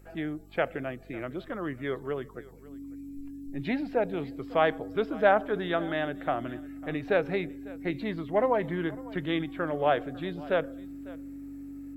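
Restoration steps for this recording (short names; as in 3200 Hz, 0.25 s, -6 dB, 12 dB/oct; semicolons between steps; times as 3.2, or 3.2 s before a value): de-hum 48.6 Hz, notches 8; notch 280 Hz, Q 30; inverse comb 0.55 s -20.5 dB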